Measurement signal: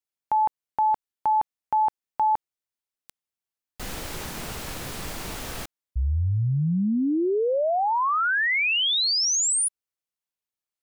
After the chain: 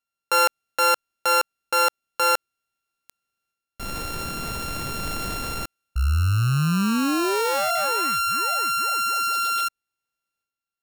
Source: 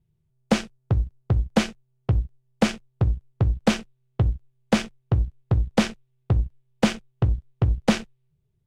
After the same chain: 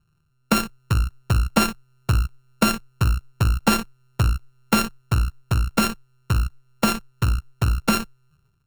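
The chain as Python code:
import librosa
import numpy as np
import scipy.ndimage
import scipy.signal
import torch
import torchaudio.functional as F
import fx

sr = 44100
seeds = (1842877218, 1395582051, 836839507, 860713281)

y = np.r_[np.sort(x[:len(x) // 32 * 32].reshape(-1, 32), axis=1).ravel(), x[len(x) // 32 * 32:]]
y = fx.transient(y, sr, attack_db=-2, sustain_db=7)
y = fx.rider(y, sr, range_db=3, speed_s=2.0)
y = F.gain(torch.from_numpy(y), 2.0).numpy()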